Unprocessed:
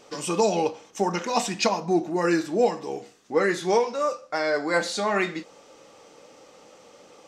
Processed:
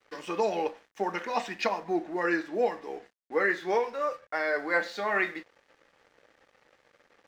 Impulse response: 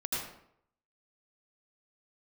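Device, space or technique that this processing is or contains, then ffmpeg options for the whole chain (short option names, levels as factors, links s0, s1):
pocket radio on a weak battery: -af "highpass=280,lowpass=3500,aeval=exprs='sgn(val(0))*max(abs(val(0))-0.00266,0)':c=same,equalizer=f=1800:t=o:w=0.54:g=8,volume=0.562"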